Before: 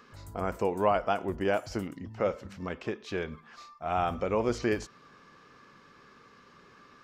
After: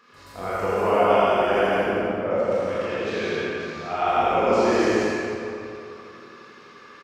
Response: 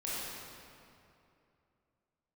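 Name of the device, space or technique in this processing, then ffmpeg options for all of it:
PA in a hall: -filter_complex "[0:a]asettb=1/sr,asplit=3[link_01][link_02][link_03];[link_01]atrim=end=1.584[link_04];[link_02]atrim=start=1.58:end=2.31,asetpts=PTS-STARTPTS,afade=type=in:duration=0.004:curve=qsin,afade=type=out:start_time=0.726:duration=0.004:curve=qsin,lowpass=1400[link_05];[link_03]atrim=start=2.306[link_06];[link_04][link_05]acrossfade=duration=0.004:curve1=hsin:curve2=qsin[link_07];[link_07][link_06]acrossfade=duration=0.004:curve1=qsin:curve2=hsin,highpass=frequency=180:poles=1,equalizer=frequency=2700:width_type=o:width=2.7:gain=4.5,aecho=1:1:83:0.631[link_08];[1:a]atrim=start_sample=2205[link_09];[link_08][link_09]afir=irnorm=-1:irlink=0,aecho=1:1:105|169.1:0.355|0.794"

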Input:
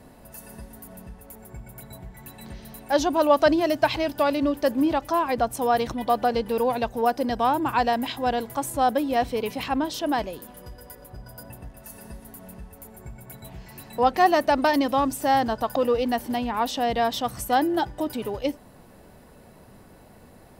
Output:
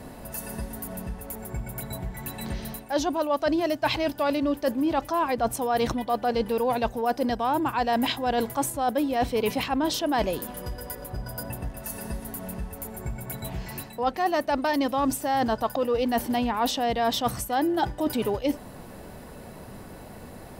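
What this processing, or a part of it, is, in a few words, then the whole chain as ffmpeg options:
compression on the reversed sound: -af "areverse,acompressor=threshold=-29dB:ratio=12,areverse,volume=7.5dB"

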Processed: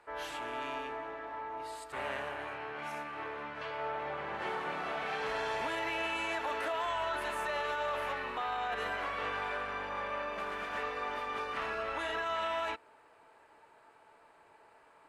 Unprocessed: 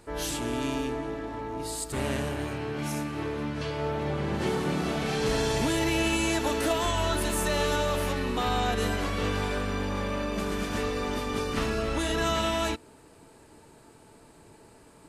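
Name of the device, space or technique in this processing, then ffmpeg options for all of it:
DJ mixer with the lows and highs turned down: -filter_complex "[0:a]acrossover=split=590 2700:gain=0.0708 1 0.1[link_01][link_02][link_03];[link_01][link_02][link_03]amix=inputs=3:normalize=0,alimiter=level_in=2.5dB:limit=-24dB:level=0:latency=1:release=14,volume=-2.5dB"

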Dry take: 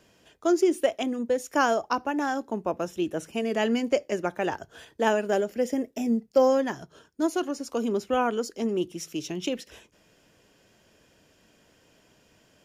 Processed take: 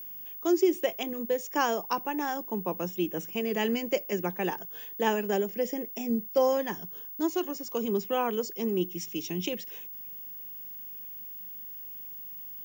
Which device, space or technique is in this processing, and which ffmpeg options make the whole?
old television with a line whistle: -af "highpass=frequency=180:width=0.5412,highpass=frequency=180:width=1.3066,equalizer=frequency=180:width_type=q:width=4:gain=8,equalizer=frequency=260:width_type=q:width=4:gain=-9,equalizer=frequency=630:width_type=q:width=4:gain=-10,equalizer=frequency=1400:width_type=q:width=4:gain=-9,equalizer=frequency=4200:width_type=q:width=4:gain=-4,lowpass=frequency=7400:width=0.5412,lowpass=frequency=7400:width=1.3066,aeval=exprs='val(0)+0.0112*sin(2*PI*15625*n/s)':channel_layout=same"

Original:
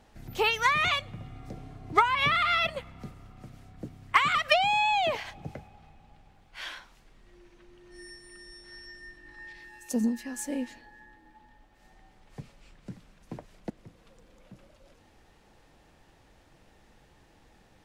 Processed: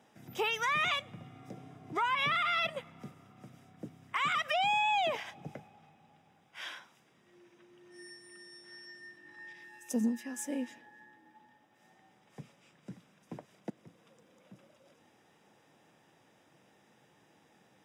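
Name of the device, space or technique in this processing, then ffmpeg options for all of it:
PA system with an anti-feedback notch: -af "highpass=frequency=130:width=0.5412,highpass=frequency=130:width=1.3066,asuperstop=centerf=4300:order=20:qfactor=7.4,alimiter=limit=-19dB:level=0:latency=1:release=54,volume=-3.5dB"

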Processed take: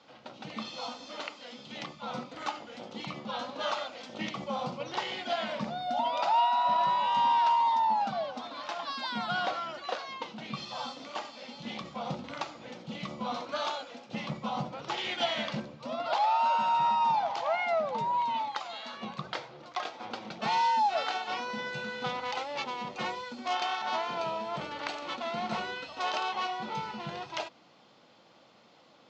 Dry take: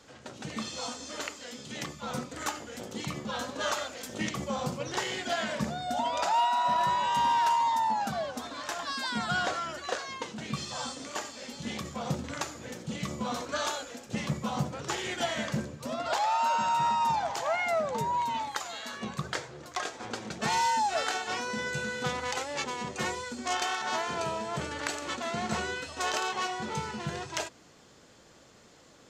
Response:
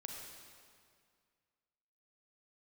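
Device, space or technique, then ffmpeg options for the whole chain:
kitchen radio: -filter_complex "[0:a]asettb=1/sr,asplit=3[link_01][link_02][link_03];[link_01]atrim=end=14.974[link_04];[link_02]atrim=start=14.97:end=15.6,asetpts=PTS-STARTPTS,afade=type=in:duration=0.004:curve=qsin,afade=type=out:start_time=0.626:duration=0.004:curve=qsin,equalizer=frequency=3600:width=0.64:gain=5[link_05];[link_03]atrim=start=15.596[link_06];[link_04][link_05]acrossfade=duration=0.004:curve1=hsin:curve2=qsin[link_07];[link_07][link_06]acrossfade=duration=0.004:curve1=qsin:curve2=hsin,highpass=200,equalizer=frequency=280:width_type=q:width=4:gain=-3,equalizer=frequency=410:width_type=q:width=4:gain=-8,equalizer=frequency=810:width_type=q:width=4:gain=3,equalizer=frequency=1700:width_type=q:width=4:gain=-8,lowpass=frequency=4500:width=0.5412,lowpass=frequency=4500:width=1.3066"

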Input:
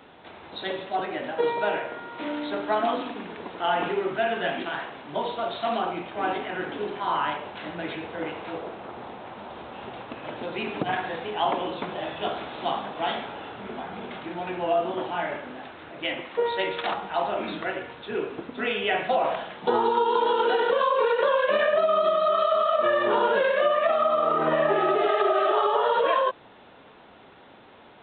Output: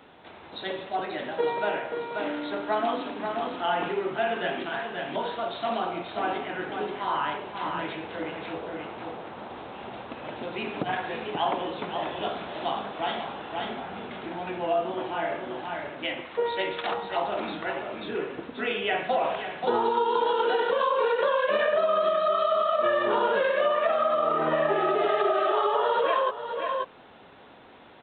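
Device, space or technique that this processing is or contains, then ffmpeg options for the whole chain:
ducked delay: -filter_complex "[0:a]asplit=3[link_01][link_02][link_03];[link_02]adelay=534,volume=-3dB[link_04];[link_03]apad=whole_len=1259567[link_05];[link_04][link_05]sidechaincompress=threshold=-30dB:ratio=8:attack=16:release=565[link_06];[link_01][link_06]amix=inputs=2:normalize=0,volume=-2dB"

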